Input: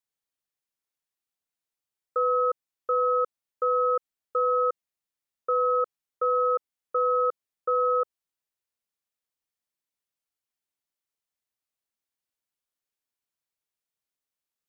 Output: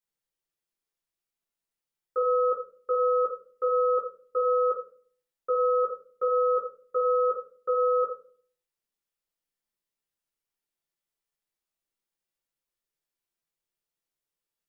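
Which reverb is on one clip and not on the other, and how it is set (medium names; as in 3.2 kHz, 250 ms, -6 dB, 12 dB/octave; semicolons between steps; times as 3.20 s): simulated room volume 41 m³, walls mixed, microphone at 0.89 m; trim -5 dB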